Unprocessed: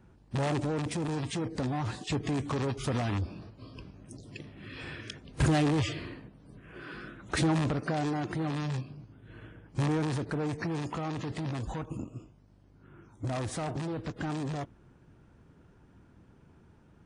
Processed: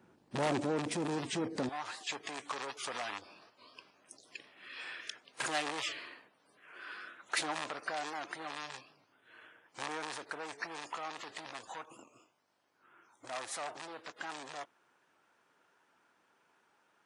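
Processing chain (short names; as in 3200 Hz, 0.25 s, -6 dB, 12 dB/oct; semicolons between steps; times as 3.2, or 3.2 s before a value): HPF 250 Hz 12 dB/oct, from 1.69 s 860 Hz; record warp 78 rpm, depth 100 cents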